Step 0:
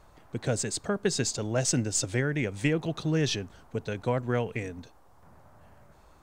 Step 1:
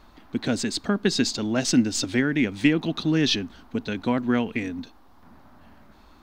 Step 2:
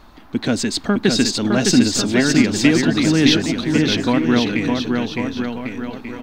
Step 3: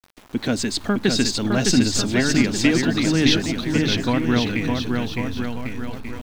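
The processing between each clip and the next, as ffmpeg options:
ffmpeg -i in.wav -af "equalizer=frequency=125:width_type=o:width=1:gain=-11,equalizer=frequency=250:width_type=o:width=1:gain=11,equalizer=frequency=500:width_type=o:width=1:gain=-8,equalizer=frequency=4000:width_type=o:width=1:gain=7,equalizer=frequency=8000:width_type=o:width=1:gain=-10,volume=5dB" out.wav
ffmpeg -i in.wav -filter_complex "[0:a]asplit=2[link_01][link_02];[link_02]asoftclip=type=tanh:threshold=-23.5dB,volume=-12dB[link_03];[link_01][link_03]amix=inputs=2:normalize=0,aecho=1:1:610|1098|1488|1801|2051:0.631|0.398|0.251|0.158|0.1,volume=4.5dB" out.wav
ffmpeg -i in.wav -af "asubboost=boost=4.5:cutoff=130,bandreject=frequency=50:width_type=h:width=6,bandreject=frequency=100:width_type=h:width=6,bandreject=frequency=150:width_type=h:width=6,aeval=exprs='val(0)*gte(abs(val(0)),0.0133)':channel_layout=same,volume=-2.5dB" out.wav

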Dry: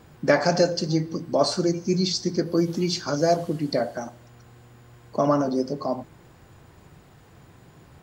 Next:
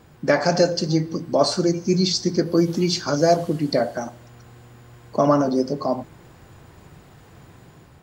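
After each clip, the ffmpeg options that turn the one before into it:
ffmpeg -i in.wav -af "dynaudnorm=framelen=180:gausssize=5:maxgain=4dB" out.wav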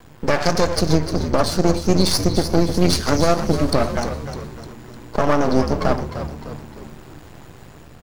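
ffmpeg -i in.wav -filter_complex "[0:a]alimiter=limit=-12dB:level=0:latency=1:release=265,aeval=exprs='max(val(0),0)':channel_layout=same,asplit=2[link_01][link_02];[link_02]asplit=5[link_03][link_04][link_05][link_06][link_07];[link_03]adelay=303,afreqshift=-75,volume=-9.5dB[link_08];[link_04]adelay=606,afreqshift=-150,volume=-15.7dB[link_09];[link_05]adelay=909,afreqshift=-225,volume=-21.9dB[link_10];[link_06]adelay=1212,afreqshift=-300,volume=-28.1dB[link_11];[link_07]adelay=1515,afreqshift=-375,volume=-34.3dB[link_12];[link_08][link_09][link_10][link_11][link_12]amix=inputs=5:normalize=0[link_13];[link_01][link_13]amix=inputs=2:normalize=0,volume=8.5dB" out.wav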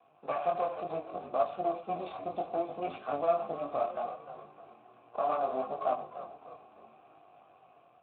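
ffmpeg -i in.wav -filter_complex "[0:a]flanger=delay=19:depth=5.7:speed=0.69,asplit=3[link_01][link_02][link_03];[link_01]bandpass=frequency=730:width_type=q:width=8,volume=0dB[link_04];[link_02]bandpass=frequency=1090:width_type=q:width=8,volume=-6dB[link_05];[link_03]bandpass=frequency=2440:width_type=q:width=8,volume=-9dB[link_06];[link_04][link_05][link_06]amix=inputs=3:normalize=0" -ar 8000 -c:a libspeex -b:a 15k out.spx

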